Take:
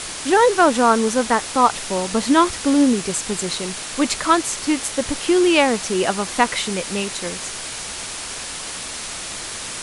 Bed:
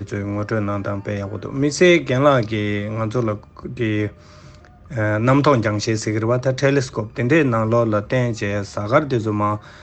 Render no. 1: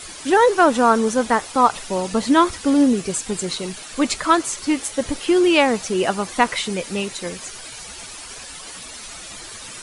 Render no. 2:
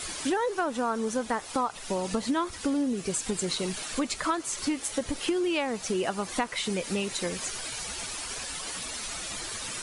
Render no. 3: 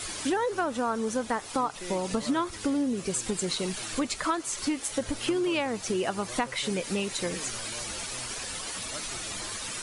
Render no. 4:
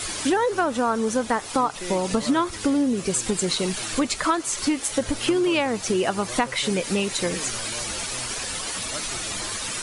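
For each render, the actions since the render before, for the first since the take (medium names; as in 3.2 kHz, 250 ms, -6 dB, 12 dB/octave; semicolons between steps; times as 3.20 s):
noise reduction 11 dB, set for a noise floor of -31 dBFS
compression 6:1, threshold -26 dBFS, peak gain reduction 16 dB
add bed -29 dB
trim +6 dB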